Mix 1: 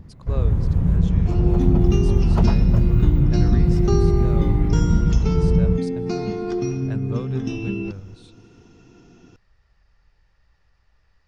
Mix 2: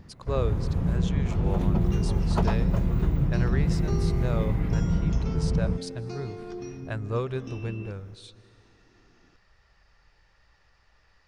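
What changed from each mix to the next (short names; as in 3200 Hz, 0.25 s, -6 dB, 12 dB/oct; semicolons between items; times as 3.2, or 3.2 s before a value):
speech +5.5 dB; second sound -10.5 dB; master: add low shelf 220 Hz -9 dB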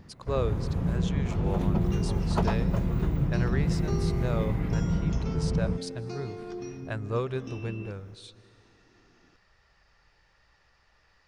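master: add low shelf 81 Hz -6 dB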